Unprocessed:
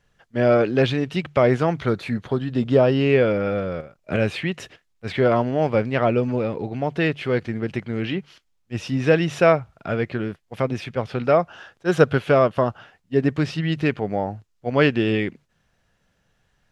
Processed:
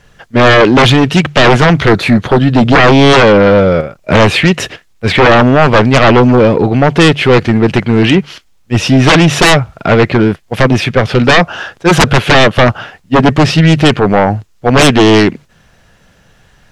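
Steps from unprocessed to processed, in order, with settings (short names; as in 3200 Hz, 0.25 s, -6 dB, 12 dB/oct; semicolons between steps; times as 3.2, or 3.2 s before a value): sine folder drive 16 dB, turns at -2 dBFS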